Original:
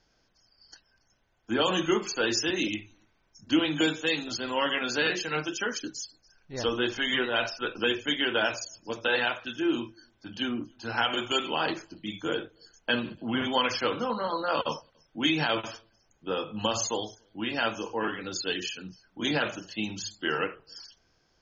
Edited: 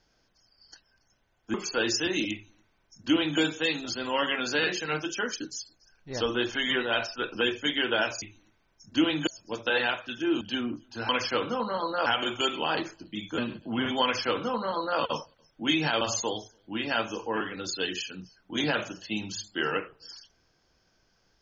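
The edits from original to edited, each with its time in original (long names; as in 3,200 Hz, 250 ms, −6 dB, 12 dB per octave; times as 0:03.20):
0:01.54–0:01.97: remove
0:02.77–0:03.82: duplicate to 0:08.65
0:09.79–0:10.29: remove
0:12.29–0:12.94: remove
0:13.59–0:14.56: duplicate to 0:10.97
0:15.57–0:16.68: remove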